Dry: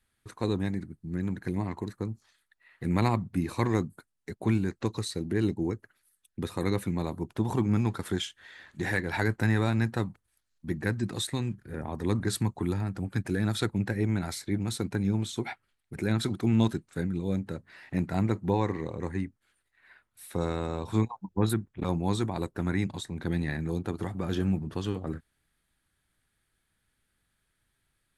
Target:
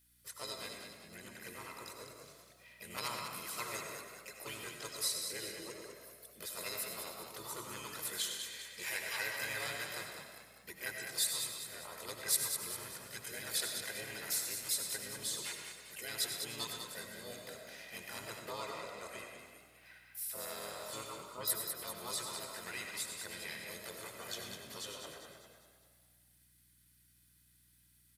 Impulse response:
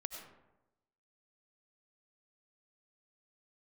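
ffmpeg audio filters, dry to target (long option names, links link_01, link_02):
-filter_complex "[0:a]aderivative,aecho=1:1:2:0.64,asplit=2[link_01][link_02];[link_02]acompressor=threshold=-57dB:ratio=6,volume=0dB[link_03];[link_01][link_03]amix=inputs=2:normalize=0,asplit=3[link_04][link_05][link_06];[link_05]asetrate=22050,aresample=44100,atempo=2,volume=-17dB[link_07];[link_06]asetrate=55563,aresample=44100,atempo=0.793701,volume=-1dB[link_08];[link_04][link_07][link_08]amix=inputs=3:normalize=0,aeval=exprs='val(0)+0.0002*(sin(2*PI*60*n/s)+sin(2*PI*2*60*n/s)/2+sin(2*PI*3*60*n/s)/3+sin(2*PI*4*60*n/s)/4+sin(2*PI*5*60*n/s)/5)':channel_layout=same,asplit=7[link_09][link_10][link_11][link_12][link_13][link_14][link_15];[link_10]adelay=200,afreqshift=38,volume=-7dB[link_16];[link_11]adelay=400,afreqshift=76,volume=-13.4dB[link_17];[link_12]adelay=600,afreqshift=114,volume=-19.8dB[link_18];[link_13]adelay=800,afreqshift=152,volume=-26.1dB[link_19];[link_14]adelay=1000,afreqshift=190,volume=-32.5dB[link_20];[link_15]adelay=1200,afreqshift=228,volume=-38.9dB[link_21];[link_09][link_16][link_17][link_18][link_19][link_20][link_21]amix=inputs=7:normalize=0[link_22];[1:a]atrim=start_sample=2205[link_23];[link_22][link_23]afir=irnorm=-1:irlink=0,volume=2.5dB"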